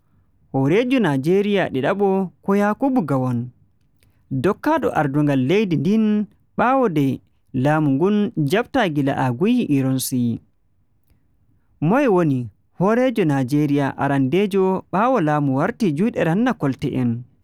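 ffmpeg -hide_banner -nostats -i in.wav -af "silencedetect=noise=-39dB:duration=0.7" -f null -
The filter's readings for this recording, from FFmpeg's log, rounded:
silence_start: 10.38
silence_end: 11.82 | silence_duration: 1.44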